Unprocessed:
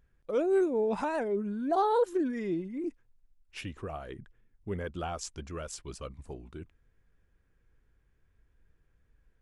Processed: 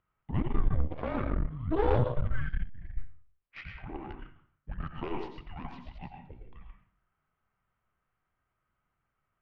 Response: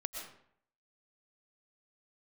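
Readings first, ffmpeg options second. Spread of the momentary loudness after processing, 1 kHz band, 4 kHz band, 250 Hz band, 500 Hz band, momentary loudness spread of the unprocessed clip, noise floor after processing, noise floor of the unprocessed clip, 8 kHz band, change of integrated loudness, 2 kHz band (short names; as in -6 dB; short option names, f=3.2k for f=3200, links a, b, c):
19 LU, -5.5 dB, -5.5 dB, -4.5 dB, -6.5 dB, 19 LU, -82 dBFS, -71 dBFS, under -30 dB, -2.5 dB, -0.5 dB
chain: -filter_complex "[0:a]highpass=f=230:t=q:w=0.5412,highpass=f=230:t=q:w=1.307,lowpass=f=3.5k:t=q:w=0.5176,lowpass=f=3.5k:t=q:w=0.7071,lowpass=f=3.5k:t=q:w=1.932,afreqshift=-360[a];[1:a]atrim=start_sample=2205,asetrate=52920,aresample=44100[b];[a][b]afir=irnorm=-1:irlink=0,aeval=exprs='0.168*(cos(1*acos(clip(val(0)/0.168,-1,1)))-cos(1*PI/2))+0.0168*(cos(4*acos(clip(val(0)/0.168,-1,1)))-cos(4*PI/2))+0.015*(cos(8*acos(clip(val(0)/0.168,-1,1)))-cos(8*PI/2))':c=same,volume=1.5dB"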